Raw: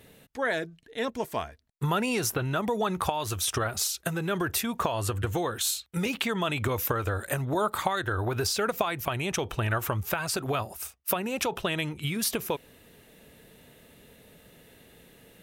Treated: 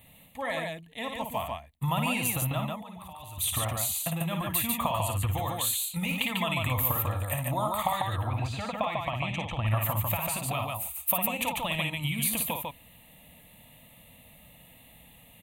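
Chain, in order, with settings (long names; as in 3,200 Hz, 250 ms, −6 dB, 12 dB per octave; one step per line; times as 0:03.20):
high-shelf EQ 7,500 Hz +5.5 dB
phaser with its sweep stopped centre 1,500 Hz, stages 6
0:02.67–0:03.38: output level in coarse steps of 23 dB
0:08.24–0:09.67: high-frequency loss of the air 140 metres
loudspeakers that aren't time-aligned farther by 19 metres −6 dB, 50 metres −3 dB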